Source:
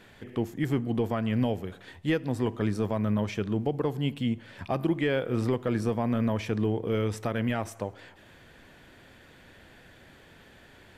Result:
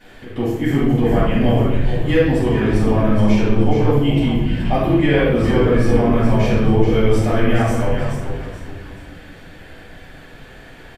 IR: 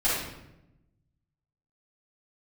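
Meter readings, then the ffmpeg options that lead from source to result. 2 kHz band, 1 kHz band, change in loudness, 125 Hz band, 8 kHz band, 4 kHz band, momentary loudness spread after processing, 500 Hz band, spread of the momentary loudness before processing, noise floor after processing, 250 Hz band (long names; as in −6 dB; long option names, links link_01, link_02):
+12.0 dB, +12.5 dB, +12.5 dB, +13.5 dB, can't be measured, +11.0 dB, 10 LU, +12.5 dB, 7 LU, −41 dBFS, +12.0 dB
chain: -filter_complex "[0:a]asplit=5[link_01][link_02][link_03][link_04][link_05];[link_02]adelay=426,afreqshift=-100,volume=-7dB[link_06];[link_03]adelay=852,afreqshift=-200,volume=-15.4dB[link_07];[link_04]adelay=1278,afreqshift=-300,volume=-23.8dB[link_08];[link_05]adelay=1704,afreqshift=-400,volume=-32.2dB[link_09];[link_01][link_06][link_07][link_08][link_09]amix=inputs=5:normalize=0[link_10];[1:a]atrim=start_sample=2205[link_11];[link_10][link_11]afir=irnorm=-1:irlink=0,volume=-1.5dB"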